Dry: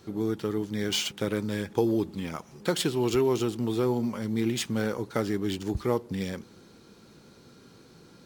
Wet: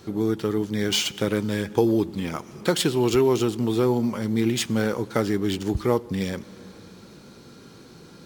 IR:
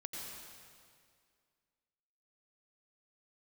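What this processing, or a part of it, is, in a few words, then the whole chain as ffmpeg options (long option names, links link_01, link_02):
ducked reverb: -filter_complex "[0:a]asplit=3[link_01][link_02][link_03];[1:a]atrim=start_sample=2205[link_04];[link_02][link_04]afir=irnorm=-1:irlink=0[link_05];[link_03]apad=whole_len=363942[link_06];[link_05][link_06]sidechaincompress=threshold=-37dB:ratio=8:attack=28:release=628,volume=-8dB[link_07];[link_01][link_07]amix=inputs=2:normalize=0,volume=4.5dB"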